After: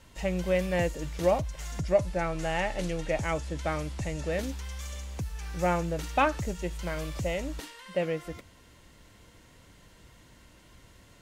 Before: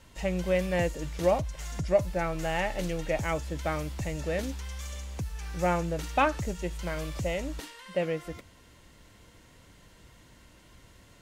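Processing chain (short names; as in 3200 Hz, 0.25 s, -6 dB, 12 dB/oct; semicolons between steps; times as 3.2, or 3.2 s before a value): 1.94–4.32 LPF 11000 Hz 24 dB/oct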